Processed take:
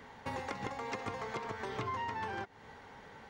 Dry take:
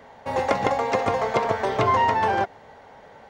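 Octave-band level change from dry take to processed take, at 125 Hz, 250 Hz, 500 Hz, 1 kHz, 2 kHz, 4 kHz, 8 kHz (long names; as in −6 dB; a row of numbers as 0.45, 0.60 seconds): −13.5, −14.0, −19.0, −17.5, −13.5, −13.0, −12.0 decibels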